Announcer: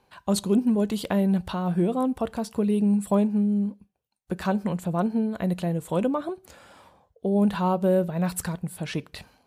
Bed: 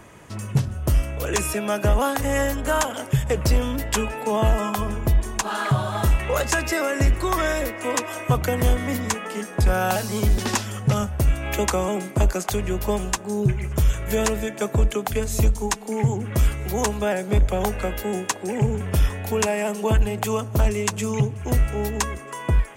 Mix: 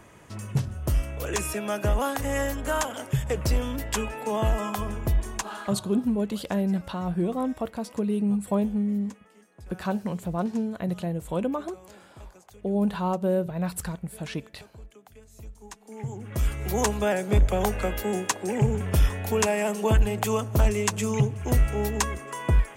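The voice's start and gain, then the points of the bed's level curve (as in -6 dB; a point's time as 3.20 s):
5.40 s, -3.0 dB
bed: 5.35 s -5 dB
6.09 s -27 dB
15.33 s -27 dB
16.69 s -1.5 dB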